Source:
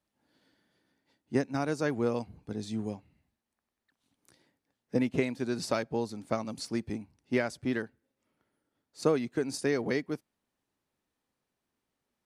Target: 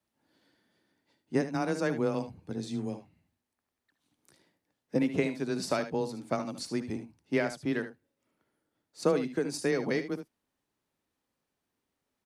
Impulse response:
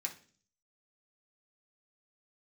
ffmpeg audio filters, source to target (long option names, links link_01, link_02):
-af "aecho=1:1:62|75:0.126|0.266,afreqshift=15"